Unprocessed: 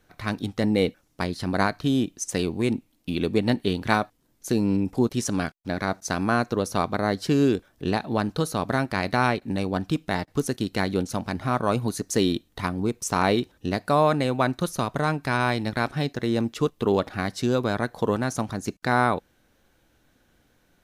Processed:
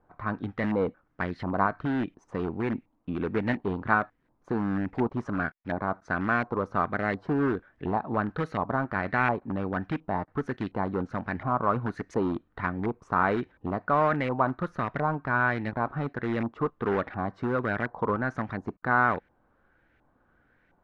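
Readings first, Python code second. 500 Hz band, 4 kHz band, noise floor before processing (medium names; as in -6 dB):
-4.5 dB, -17.5 dB, -65 dBFS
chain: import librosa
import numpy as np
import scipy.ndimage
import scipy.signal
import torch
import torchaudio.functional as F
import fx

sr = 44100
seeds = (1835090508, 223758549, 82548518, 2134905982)

p1 = (np.mod(10.0 ** (18.0 / 20.0) * x + 1.0, 2.0) - 1.0) / 10.0 ** (18.0 / 20.0)
p2 = x + (p1 * 10.0 ** (-9.5 / 20.0))
p3 = fx.filter_lfo_lowpass(p2, sr, shape='saw_up', hz=1.4, low_hz=910.0, high_hz=2100.0, q=2.8)
y = p3 * 10.0 ** (-6.5 / 20.0)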